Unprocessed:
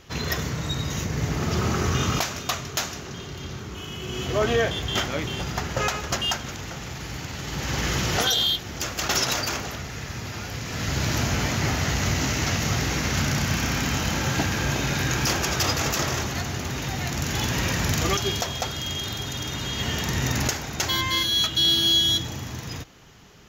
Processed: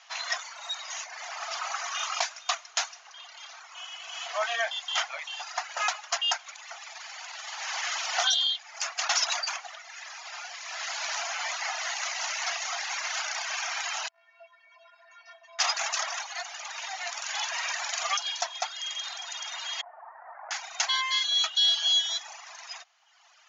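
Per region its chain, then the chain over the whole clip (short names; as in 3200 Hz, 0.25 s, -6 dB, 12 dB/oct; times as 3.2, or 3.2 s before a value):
14.08–15.59 air absorption 340 m + metallic resonator 330 Hz, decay 0.44 s, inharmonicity 0.008 + core saturation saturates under 310 Hz
19.81–20.51 Gaussian blur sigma 7.7 samples + low shelf 300 Hz -8.5 dB
whole clip: reverb removal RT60 1.3 s; Chebyshev band-pass 670–6900 Hz, order 5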